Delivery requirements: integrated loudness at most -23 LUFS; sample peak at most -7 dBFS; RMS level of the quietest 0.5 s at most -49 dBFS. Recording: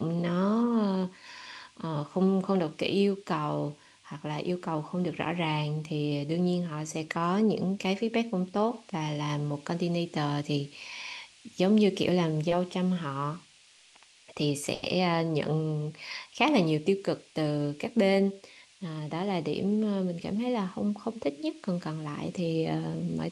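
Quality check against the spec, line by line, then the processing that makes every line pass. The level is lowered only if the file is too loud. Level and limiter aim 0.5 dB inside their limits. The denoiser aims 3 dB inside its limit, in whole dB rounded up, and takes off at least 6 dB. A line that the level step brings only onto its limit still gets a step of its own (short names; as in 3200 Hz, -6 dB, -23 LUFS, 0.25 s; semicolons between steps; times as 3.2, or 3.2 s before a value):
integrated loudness -29.5 LUFS: OK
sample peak -10.5 dBFS: OK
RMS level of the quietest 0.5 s -59 dBFS: OK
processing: none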